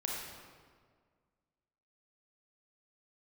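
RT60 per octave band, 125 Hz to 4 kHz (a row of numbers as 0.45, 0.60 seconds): 2.0, 2.0, 1.9, 1.7, 1.4, 1.2 seconds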